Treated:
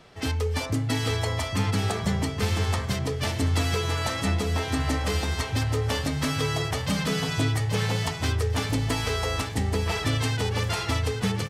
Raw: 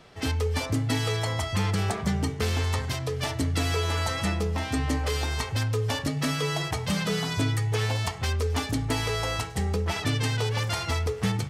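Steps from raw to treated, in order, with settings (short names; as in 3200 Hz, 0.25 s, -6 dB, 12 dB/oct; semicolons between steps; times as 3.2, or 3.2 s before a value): feedback echo 0.829 s, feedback 41%, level -6 dB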